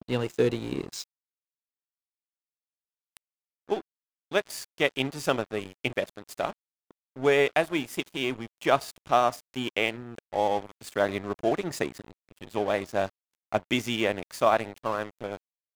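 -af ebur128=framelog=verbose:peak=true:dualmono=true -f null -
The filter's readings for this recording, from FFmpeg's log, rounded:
Integrated loudness:
  I:         -25.7 LUFS
  Threshold: -36.3 LUFS
Loudness range:
  LRA:         9.7 LU
  Threshold: -46.8 LUFS
  LRA low:   -33.9 LUFS
  LRA high:  -24.2 LUFS
True peak:
  Peak:       -7.4 dBFS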